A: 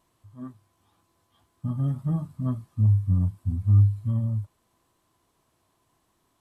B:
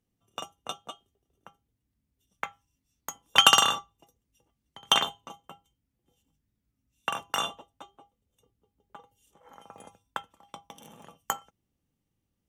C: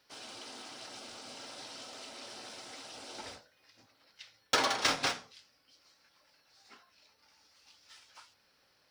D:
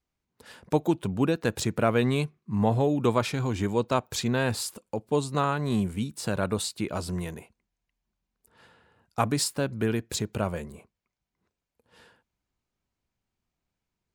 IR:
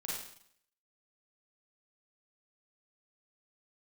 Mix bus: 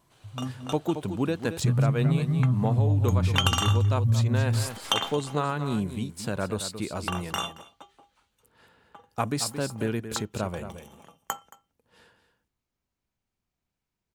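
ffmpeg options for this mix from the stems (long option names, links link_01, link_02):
-filter_complex "[0:a]equalizer=frequency=130:width_type=o:width=0.61:gain=9,alimiter=limit=-15.5dB:level=0:latency=1,volume=2.5dB,asplit=2[link_01][link_02];[link_02]volume=-6.5dB[link_03];[1:a]volume=-1.5dB,asplit=2[link_04][link_05];[link_05]volume=-20.5dB[link_06];[2:a]equalizer=frequency=5200:width_type=o:width=0.33:gain=-14,aeval=exprs='(tanh(39.8*val(0)+0.75)-tanh(0.75))/39.8':channel_layout=same,volume=-7.5dB,asplit=2[link_07][link_08];[link_08]volume=-8.5dB[link_09];[3:a]volume=-2dB,asplit=2[link_10][link_11];[link_11]volume=-10.5dB[link_12];[link_03][link_06][link_09][link_12]amix=inputs=4:normalize=0,aecho=0:1:224:1[link_13];[link_01][link_04][link_07][link_10][link_13]amix=inputs=5:normalize=0,acompressor=threshold=-19dB:ratio=6"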